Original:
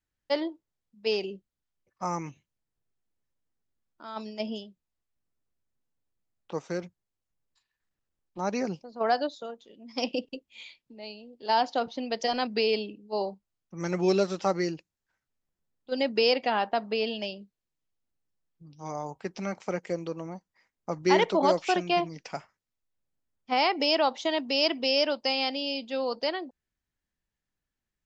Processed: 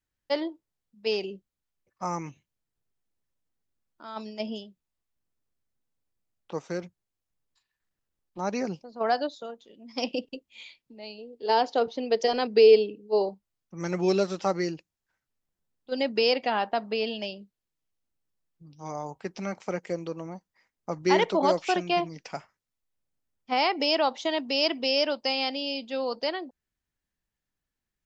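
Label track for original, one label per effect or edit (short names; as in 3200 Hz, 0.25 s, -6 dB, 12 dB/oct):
11.180000	13.290000	bell 440 Hz +11.5 dB 0.34 oct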